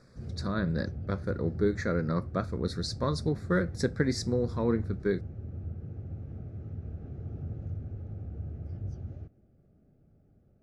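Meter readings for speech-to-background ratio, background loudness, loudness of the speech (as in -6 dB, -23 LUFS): 8.5 dB, -40.0 LUFS, -31.5 LUFS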